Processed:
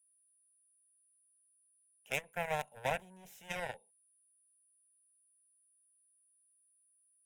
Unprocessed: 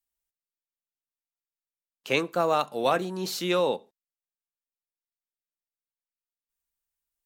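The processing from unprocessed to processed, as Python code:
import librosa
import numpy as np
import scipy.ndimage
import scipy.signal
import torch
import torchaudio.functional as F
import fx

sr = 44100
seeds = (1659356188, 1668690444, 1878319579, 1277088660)

y = x + 10.0 ** (-53.0 / 20.0) * np.sin(2.0 * np.pi * 9800.0 * np.arange(len(x)) / sr)
y = fx.cheby_harmonics(y, sr, harmonics=(7,), levels_db=(-14,), full_scale_db=-8.5)
y = fx.fixed_phaser(y, sr, hz=1200.0, stages=6)
y = y * 10.0 ** (-7.0 / 20.0)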